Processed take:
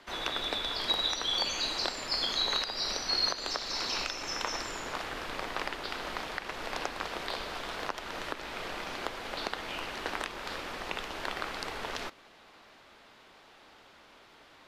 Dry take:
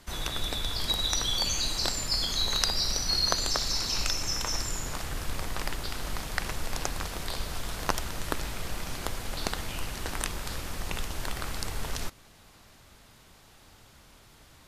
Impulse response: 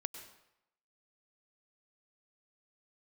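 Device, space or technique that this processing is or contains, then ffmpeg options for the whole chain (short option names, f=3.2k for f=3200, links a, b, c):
DJ mixer with the lows and highs turned down: -filter_complex "[0:a]acrossover=split=260 4400:gain=0.112 1 0.126[a][b][c];[a][b][c]amix=inputs=3:normalize=0,alimiter=limit=-18.5dB:level=0:latency=1:release=252,volume=3dB"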